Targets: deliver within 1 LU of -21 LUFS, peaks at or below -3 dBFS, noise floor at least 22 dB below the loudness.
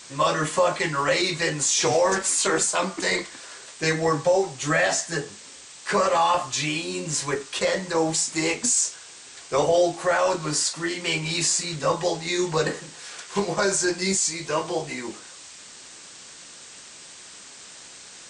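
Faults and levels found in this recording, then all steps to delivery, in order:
noise floor -45 dBFS; noise floor target -46 dBFS; loudness -23.5 LUFS; peak level -10.0 dBFS; loudness target -21.0 LUFS
-> noise reduction 6 dB, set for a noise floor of -45 dBFS; trim +2.5 dB

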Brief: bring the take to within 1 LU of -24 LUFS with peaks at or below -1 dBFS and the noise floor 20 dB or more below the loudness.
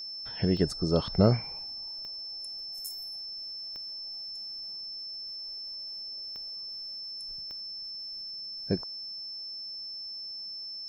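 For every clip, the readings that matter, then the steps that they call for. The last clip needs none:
clicks found 5; steady tone 5.3 kHz; tone level -37 dBFS; loudness -33.5 LUFS; peak level -9.0 dBFS; loudness target -24.0 LUFS
-> de-click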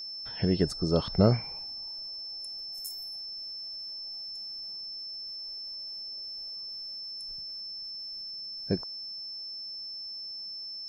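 clicks found 0; steady tone 5.3 kHz; tone level -37 dBFS
-> band-stop 5.3 kHz, Q 30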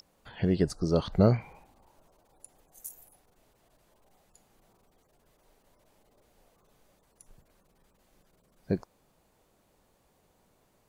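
steady tone not found; loudness -29.0 LUFS; peak level -9.5 dBFS; loudness target -24.0 LUFS
-> trim +5 dB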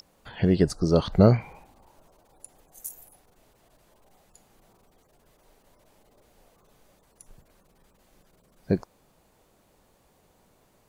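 loudness -24.0 LUFS; peak level -4.5 dBFS; noise floor -64 dBFS

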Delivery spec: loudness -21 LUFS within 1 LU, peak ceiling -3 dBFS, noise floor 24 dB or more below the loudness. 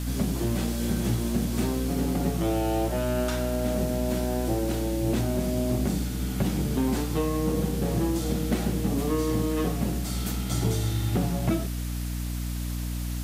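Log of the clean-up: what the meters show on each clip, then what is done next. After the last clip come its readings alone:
hum 60 Hz; highest harmonic 300 Hz; hum level -28 dBFS; noise floor -31 dBFS; noise floor target -52 dBFS; loudness -27.5 LUFS; peak level -13.5 dBFS; loudness target -21.0 LUFS
-> de-hum 60 Hz, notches 5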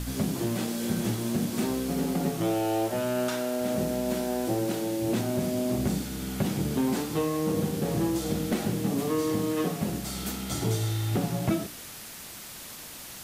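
hum not found; noise floor -43 dBFS; noise floor target -53 dBFS
-> noise reduction 10 dB, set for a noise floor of -43 dBFS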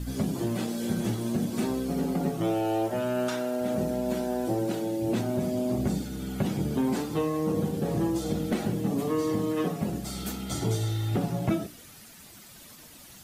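noise floor -49 dBFS; noise floor target -53 dBFS
-> noise reduction 6 dB, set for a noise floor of -49 dBFS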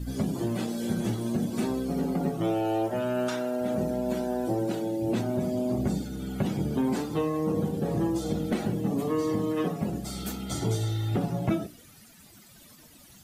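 noise floor -53 dBFS; loudness -29.0 LUFS; peak level -15.5 dBFS; loudness target -21.0 LUFS
-> trim +8 dB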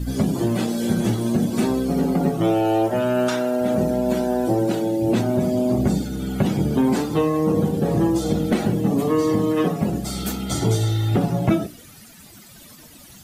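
loudness -21.0 LUFS; peak level -7.5 dBFS; noise floor -45 dBFS

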